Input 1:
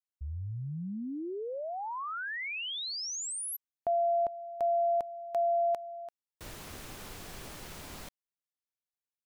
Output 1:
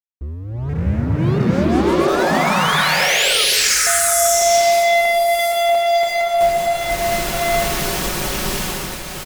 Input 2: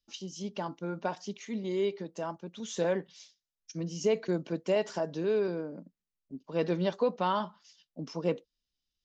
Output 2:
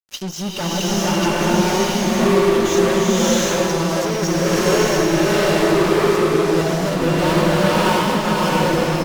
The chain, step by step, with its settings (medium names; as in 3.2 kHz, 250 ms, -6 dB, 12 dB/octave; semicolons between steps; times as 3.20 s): chunks repeated in reverse 690 ms, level -3 dB; comb 5.4 ms, depth 49%; fuzz box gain 40 dB, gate -48 dBFS; swelling reverb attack 700 ms, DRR -8 dB; trim -9 dB